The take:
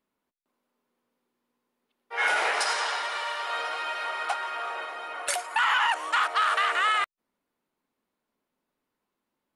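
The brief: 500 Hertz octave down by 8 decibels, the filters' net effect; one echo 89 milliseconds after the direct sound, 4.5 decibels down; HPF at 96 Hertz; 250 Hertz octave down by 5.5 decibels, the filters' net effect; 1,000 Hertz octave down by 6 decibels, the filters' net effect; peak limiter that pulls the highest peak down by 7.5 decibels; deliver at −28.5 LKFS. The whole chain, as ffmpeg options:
ffmpeg -i in.wav -af "highpass=96,equalizer=frequency=250:width_type=o:gain=-3,equalizer=frequency=500:width_type=o:gain=-7.5,equalizer=frequency=1000:width_type=o:gain=-6.5,alimiter=limit=-23dB:level=0:latency=1,aecho=1:1:89:0.596,volume=2.5dB" out.wav

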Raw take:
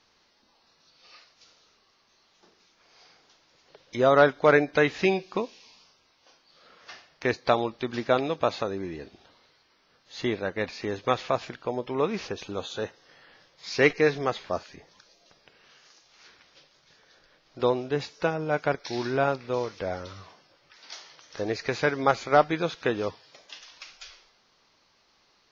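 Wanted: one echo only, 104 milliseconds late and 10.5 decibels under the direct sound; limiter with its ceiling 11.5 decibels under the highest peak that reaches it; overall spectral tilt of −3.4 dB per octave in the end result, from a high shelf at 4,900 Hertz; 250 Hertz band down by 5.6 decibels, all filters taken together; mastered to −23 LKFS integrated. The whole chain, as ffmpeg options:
ffmpeg -i in.wav -af "equalizer=frequency=250:width_type=o:gain=-8,highshelf=frequency=4900:gain=-4.5,alimiter=limit=-19dB:level=0:latency=1,aecho=1:1:104:0.299,volume=10dB" out.wav

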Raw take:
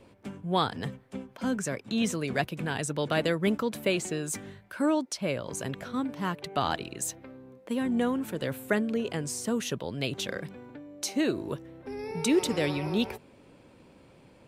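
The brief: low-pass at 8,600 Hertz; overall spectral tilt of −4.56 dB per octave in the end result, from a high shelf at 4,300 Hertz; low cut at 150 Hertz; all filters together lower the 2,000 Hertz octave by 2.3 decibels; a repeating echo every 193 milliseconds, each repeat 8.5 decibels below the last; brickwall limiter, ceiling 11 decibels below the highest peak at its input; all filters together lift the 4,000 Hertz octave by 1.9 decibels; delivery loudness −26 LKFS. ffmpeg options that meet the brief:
ffmpeg -i in.wav -af "highpass=150,lowpass=8600,equalizer=frequency=2000:width_type=o:gain=-3.5,equalizer=frequency=4000:width_type=o:gain=7,highshelf=frequency=4300:gain=-6.5,alimiter=limit=-22.5dB:level=0:latency=1,aecho=1:1:193|386|579|772:0.376|0.143|0.0543|0.0206,volume=7.5dB" out.wav

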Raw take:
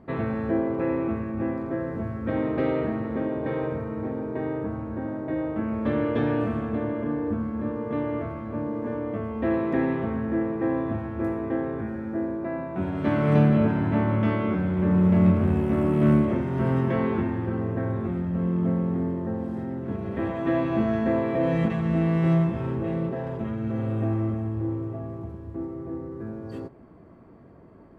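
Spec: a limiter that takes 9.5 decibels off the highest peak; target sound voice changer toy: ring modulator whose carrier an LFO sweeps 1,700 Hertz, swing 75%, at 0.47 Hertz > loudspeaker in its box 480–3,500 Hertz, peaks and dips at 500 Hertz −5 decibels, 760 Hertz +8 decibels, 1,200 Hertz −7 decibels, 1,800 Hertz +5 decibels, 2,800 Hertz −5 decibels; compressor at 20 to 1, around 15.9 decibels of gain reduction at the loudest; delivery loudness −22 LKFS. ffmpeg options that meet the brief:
ffmpeg -i in.wav -af "acompressor=threshold=-30dB:ratio=20,alimiter=level_in=7.5dB:limit=-24dB:level=0:latency=1,volume=-7.5dB,aeval=exprs='val(0)*sin(2*PI*1700*n/s+1700*0.75/0.47*sin(2*PI*0.47*n/s))':channel_layout=same,highpass=480,equalizer=frequency=500:width_type=q:width=4:gain=-5,equalizer=frequency=760:width_type=q:width=4:gain=8,equalizer=frequency=1200:width_type=q:width=4:gain=-7,equalizer=frequency=1800:width_type=q:width=4:gain=5,equalizer=frequency=2800:width_type=q:width=4:gain=-5,lowpass=frequency=3500:width=0.5412,lowpass=frequency=3500:width=1.3066,volume=18.5dB" out.wav

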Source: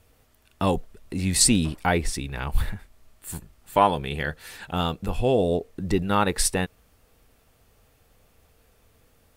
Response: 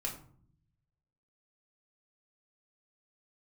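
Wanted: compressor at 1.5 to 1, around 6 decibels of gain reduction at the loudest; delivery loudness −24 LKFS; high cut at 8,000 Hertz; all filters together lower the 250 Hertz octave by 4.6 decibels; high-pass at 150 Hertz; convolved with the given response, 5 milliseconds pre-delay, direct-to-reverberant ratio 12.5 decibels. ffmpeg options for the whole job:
-filter_complex "[0:a]highpass=150,lowpass=8000,equalizer=frequency=250:width_type=o:gain=-5,acompressor=threshold=-30dB:ratio=1.5,asplit=2[link_01][link_02];[1:a]atrim=start_sample=2205,adelay=5[link_03];[link_02][link_03]afir=irnorm=-1:irlink=0,volume=-14dB[link_04];[link_01][link_04]amix=inputs=2:normalize=0,volume=6.5dB"

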